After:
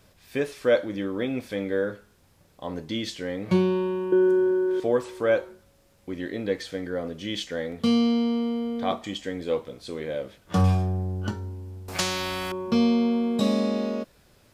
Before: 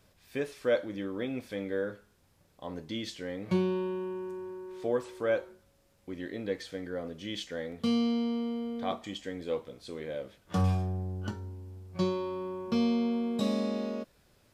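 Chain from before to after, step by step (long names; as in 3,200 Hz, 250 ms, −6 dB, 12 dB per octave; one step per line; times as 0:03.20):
0:04.12–0:04.80: hollow resonant body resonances 330/470/1,500/3,200 Hz, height 16 dB, ringing for 30 ms
0:11.88–0:12.52: every bin compressed towards the loudest bin 4 to 1
level +6.5 dB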